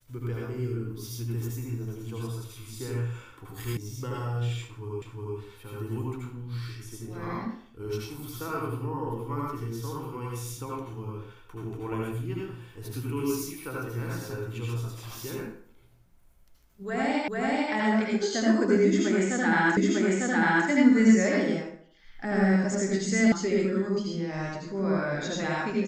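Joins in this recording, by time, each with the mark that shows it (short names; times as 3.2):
3.77 sound cut off
5.02 repeat of the last 0.36 s
17.28 repeat of the last 0.44 s
19.77 repeat of the last 0.9 s
23.32 sound cut off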